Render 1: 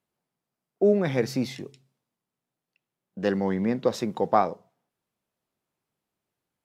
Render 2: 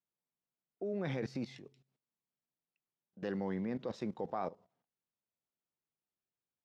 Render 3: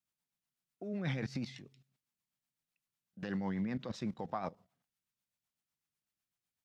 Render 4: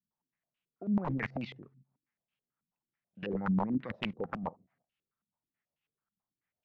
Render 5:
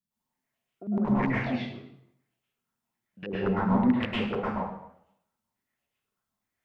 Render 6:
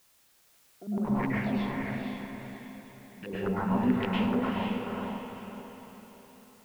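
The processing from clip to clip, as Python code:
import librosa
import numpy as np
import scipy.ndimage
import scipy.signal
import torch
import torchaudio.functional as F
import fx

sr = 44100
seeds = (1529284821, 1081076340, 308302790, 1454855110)

y1 = fx.level_steps(x, sr, step_db=16)
y1 = scipy.signal.sosfilt(scipy.signal.butter(2, 5700.0, 'lowpass', fs=sr, output='sos'), y1)
y1 = y1 * librosa.db_to_amplitude(-4.5)
y2 = fx.peak_eq(y1, sr, hz=430.0, db=-11.5, octaves=1.3)
y2 = fx.rotary(y2, sr, hz=8.0)
y2 = y2 * librosa.db_to_amplitude(6.5)
y3 = (np.mod(10.0 ** (29.0 / 20.0) * y2 + 1.0, 2.0) - 1.0) / 10.0 ** (29.0 / 20.0)
y3 = fx.filter_held_lowpass(y3, sr, hz=9.2, low_hz=210.0, high_hz=2800.0)
y4 = fx.rev_plate(y3, sr, seeds[0], rt60_s=0.74, hf_ratio=0.85, predelay_ms=95, drr_db=-7.0)
y5 = fx.dmg_noise_colour(y4, sr, seeds[1], colour='white', level_db=-61.0)
y5 = fx.echo_diffused(y5, sr, ms=491, feedback_pct=43, wet_db=-3.0)
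y5 = y5 * librosa.db_to_amplitude(-3.5)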